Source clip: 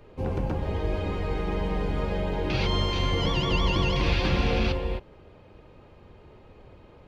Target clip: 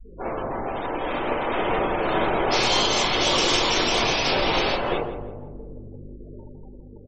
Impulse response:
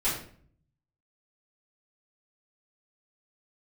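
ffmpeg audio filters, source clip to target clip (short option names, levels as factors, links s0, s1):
-filter_complex "[0:a]aeval=exprs='val(0)+0.01*(sin(2*PI*50*n/s)+sin(2*PI*2*50*n/s)/2+sin(2*PI*3*50*n/s)/3+sin(2*PI*4*50*n/s)/4+sin(2*PI*5*50*n/s)/5)':c=same,acompressor=threshold=0.0447:ratio=6,flanger=delay=3.2:depth=6.6:regen=-35:speed=1.8:shape=triangular,aeval=exprs='0.0708*(cos(1*acos(clip(val(0)/0.0708,-1,1)))-cos(1*PI/2))+0.00562*(cos(4*acos(clip(val(0)/0.0708,-1,1)))-cos(4*PI/2))+0.0316*(cos(7*acos(clip(val(0)/0.0708,-1,1)))-cos(7*PI/2))':c=same[s0];[1:a]atrim=start_sample=2205[s1];[s0][s1]afir=irnorm=-1:irlink=0,adynamicequalizer=threshold=0.0112:dfrequency=620:dqfactor=0.98:tfrequency=620:tqfactor=0.98:attack=5:release=100:ratio=0.375:range=2.5:mode=boostabove:tftype=bell,afftfilt=real='re*gte(hypot(re,im),0.0316)':imag='im*gte(hypot(re,im),0.0316)':win_size=1024:overlap=0.75,dynaudnorm=f=550:g=5:m=4.47,bass=f=250:g=-11,treble=f=4000:g=14,asplit=2[s2][s3];[s3]adelay=168,lowpass=f=1300:p=1,volume=0.355,asplit=2[s4][s5];[s5]adelay=168,lowpass=f=1300:p=1,volume=0.51,asplit=2[s6][s7];[s7]adelay=168,lowpass=f=1300:p=1,volume=0.51,asplit=2[s8][s9];[s9]adelay=168,lowpass=f=1300:p=1,volume=0.51,asplit=2[s10][s11];[s11]adelay=168,lowpass=f=1300:p=1,volume=0.51,asplit=2[s12][s13];[s13]adelay=168,lowpass=f=1300:p=1,volume=0.51[s14];[s2][s4][s6][s8][s10][s12][s14]amix=inputs=7:normalize=0,volume=0.501"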